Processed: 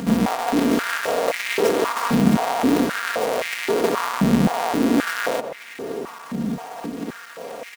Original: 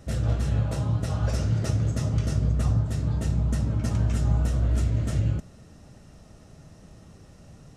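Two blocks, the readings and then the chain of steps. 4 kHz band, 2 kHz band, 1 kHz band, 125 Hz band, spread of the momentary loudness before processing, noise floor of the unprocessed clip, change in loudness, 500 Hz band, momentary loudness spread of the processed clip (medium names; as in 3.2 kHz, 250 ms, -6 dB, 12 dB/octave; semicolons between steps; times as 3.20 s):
+14.0 dB, +19.5 dB, +19.0 dB, -7.0 dB, 2 LU, -51 dBFS, +4.5 dB, +16.5 dB, 14 LU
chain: square wave that keeps the level; comb 4.3 ms, depth 90%; in parallel at -3 dB: upward compressor, threshold -22 dBFS; on the sum: saturation -14 dBFS, distortion -10 dB; on a send: filtered feedback delay 368 ms, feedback 78%, low-pass 820 Hz, level -7.5 dB; on the sum: step-sequenced high-pass 3.8 Hz 200–2100 Hz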